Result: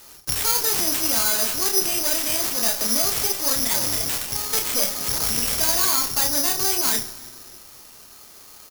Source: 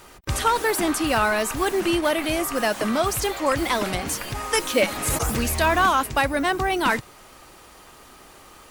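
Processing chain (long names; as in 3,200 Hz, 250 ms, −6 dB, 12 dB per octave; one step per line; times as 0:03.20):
0:03.60–0:04.02: frequency shifter −86 Hz
0:04.75–0:05.17: high-shelf EQ 3,500 Hz −10.5 dB
tube saturation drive 24 dB, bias 0.8
ambience of single reflections 31 ms −4.5 dB, 80 ms −15.5 dB
convolution reverb RT60 2.0 s, pre-delay 5 ms, DRR 10.5 dB
bad sample-rate conversion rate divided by 8×, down none, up zero stuff
level −3.5 dB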